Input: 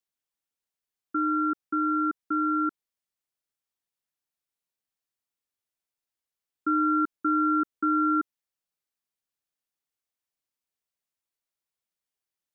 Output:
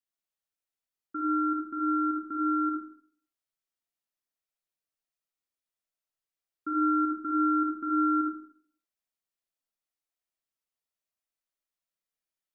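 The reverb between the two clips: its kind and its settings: digital reverb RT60 0.56 s, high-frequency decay 0.65×, pre-delay 10 ms, DRR -2.5 dB; gain -7.5 dB

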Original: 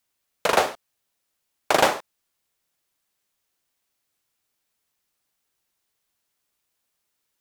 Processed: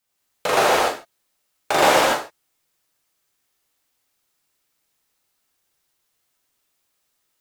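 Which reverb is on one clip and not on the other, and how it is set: non-linear reverb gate 0.31 s flat, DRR -7.5 dB; gain -3 dB

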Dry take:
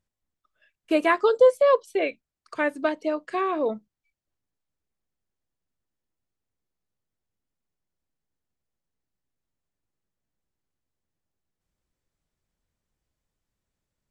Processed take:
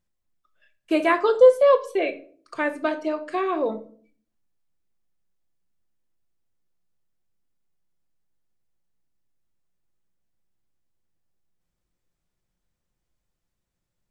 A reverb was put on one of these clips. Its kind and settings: shoebox room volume 410 m³, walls furnished, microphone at 0.89 m

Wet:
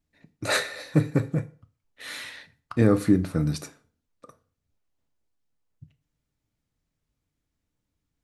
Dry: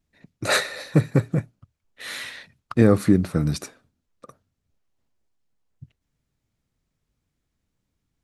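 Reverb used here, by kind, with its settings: FDN reverb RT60 0.41 s, low-frequency decay 0.9×, high-frequency decay 0.8×, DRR 9.5 dB; gain -4 dB

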